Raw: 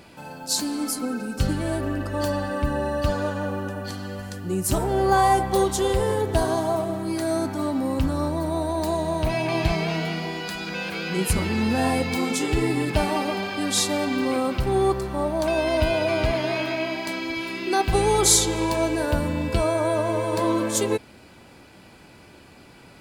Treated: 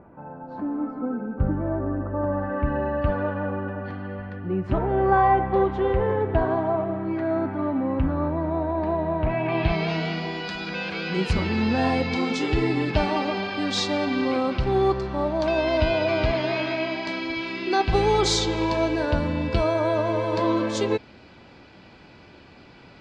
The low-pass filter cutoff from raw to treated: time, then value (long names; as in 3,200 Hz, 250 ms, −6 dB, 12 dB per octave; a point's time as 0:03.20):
low-pass filter 24 dB per octave
0:02.25 1,300 Hz
0:02.71 2,300 Hz
0:09.39 2,300 Hz
0:09.90 5,100 Hz